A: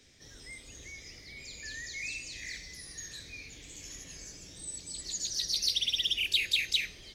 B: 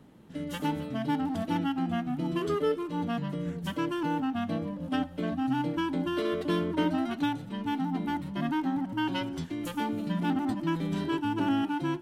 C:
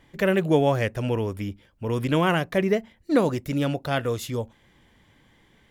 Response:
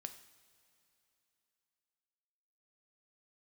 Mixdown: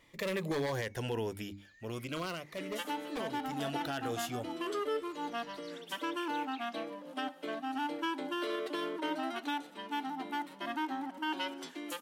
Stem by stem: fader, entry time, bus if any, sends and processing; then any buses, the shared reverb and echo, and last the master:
−16.5 dB, 0.00 s, no send, resonant band-pass 1,100 Hz, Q 0.82
0.0 dB, 2.25 s, no send, high-pass filter 280 Hz 24 dB per octave
0:01.62 −0.5 dB → 0:02.36 −11.5 dB → 0:03.34 −11.5 dB → 0:03.84 −3 dB, 0.00 s, no send, mains-hum notches 50/100/150/200/250/300 Hz; wave folding −16 dBFS; phaser whose notches keep moving one way falling 0.4 Hz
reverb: not used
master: low-shelf EQ 350 Hz −11.5 dB; brickwall limiter −26 dBFS, peak gain reduction 8.5 dB

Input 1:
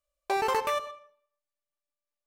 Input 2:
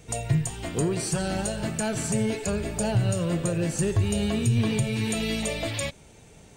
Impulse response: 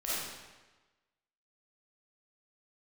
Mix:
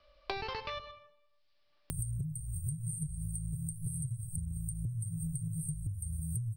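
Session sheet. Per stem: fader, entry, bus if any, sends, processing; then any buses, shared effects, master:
−8.0 dB, 0.00 s, no send, Butterworth low-pass 5,100 Hz 72 dB per octave
+0.5 dB, 1.90 s, no send, brick-wall band-stop 170–8,200 Hz; downward compressor 6 to 1, threshold −35 dBFS, peak gain reduction 15.5 dB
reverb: not used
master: multiband upward and downward compressor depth 100%

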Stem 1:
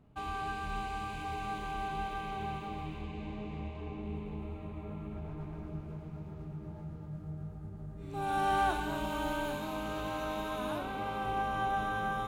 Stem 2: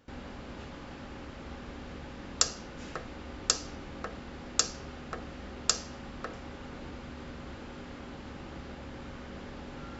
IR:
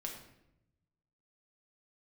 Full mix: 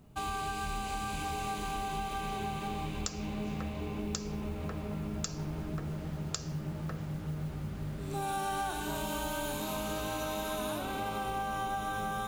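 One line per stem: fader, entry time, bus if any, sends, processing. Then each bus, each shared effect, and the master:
+1.0 dB, 0.00 s, send −3.5 dB, bass and treble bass +1 dB, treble +13 dB
−4.5 dB, 0.65 s, no send, no processing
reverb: on, RT60 0.85 s, pre-delay 5 ms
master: noise that follows the level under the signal 28 dB; downward compressor, threshold −32 dBFS, peak gain reduction 11.5 dB

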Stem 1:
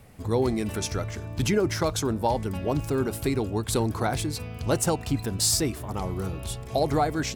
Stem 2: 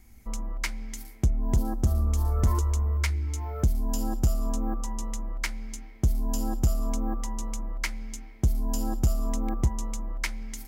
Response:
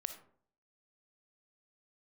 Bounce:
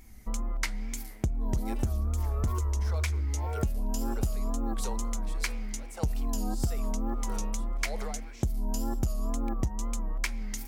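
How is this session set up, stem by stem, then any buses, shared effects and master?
−4.5 dB, 1.10 s, send −12.5 dB, Butterworth high-pass 420 Hz 48 dB per octave; brickwall limiter −24 dBFS, peak gain reduction 11.5 dB; tremolo with a sine in dB 1.6 Hz, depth 19 dB
+2.0 dB, 0.00 s, no send, tape wow and flutter 92 cents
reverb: on, RT60 0.55 s, pre-delay 15 ms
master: downward compressor 5 to 1, threshold −26 dBFS, peak gain reduction 9.5 dB

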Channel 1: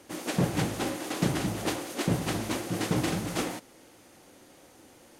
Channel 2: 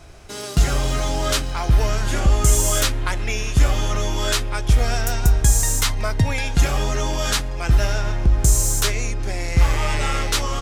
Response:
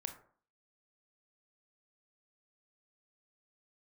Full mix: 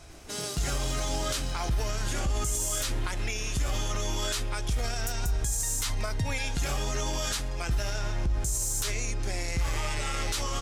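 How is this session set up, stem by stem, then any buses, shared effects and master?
−18.0 dB, 0.00 s, no send, no processing
−6.0 dB, 0.00 s, no send, parametric band 8,100 Hz +6 dB 2.3 octaves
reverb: not used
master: brickwall limiter −20.5 dBFS, peak gain reduction 12 dB

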